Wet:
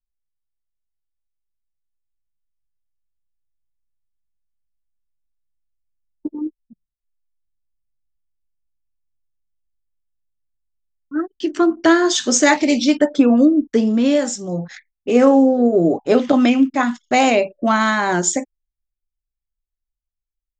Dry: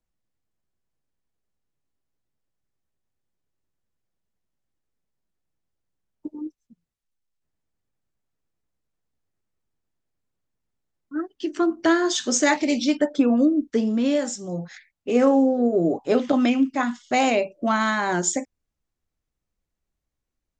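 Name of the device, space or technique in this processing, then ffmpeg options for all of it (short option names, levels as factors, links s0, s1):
voice memo with heavy noise removal: -af "anlmdn=0.0158,dynaudnorm=f=260:g=17:m=2,volume=1.19"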